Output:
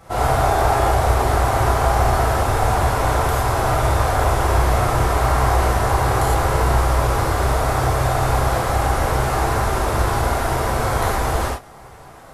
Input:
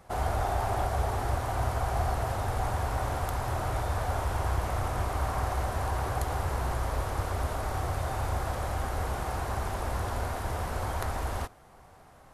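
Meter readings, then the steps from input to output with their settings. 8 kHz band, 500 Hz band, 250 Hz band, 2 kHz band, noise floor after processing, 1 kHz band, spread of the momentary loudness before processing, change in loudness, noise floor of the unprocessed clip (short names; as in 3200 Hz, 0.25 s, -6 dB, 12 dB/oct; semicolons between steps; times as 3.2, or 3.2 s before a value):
+14.0 dB, +14.0 dB, +13.5 dB, +14.0 dB, -41 dBFS, +13.5 dB, 3 LU, +13.0 dB, -54 dBFS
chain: non-linear reverb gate 0.14 s flat, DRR -8 dB; gain +5.5 dB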